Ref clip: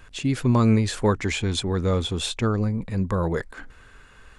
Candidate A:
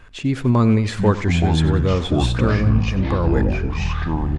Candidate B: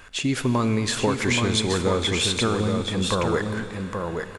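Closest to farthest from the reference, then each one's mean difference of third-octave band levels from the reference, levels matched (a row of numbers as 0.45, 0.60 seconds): A, B; 7.5, 10.0 decibels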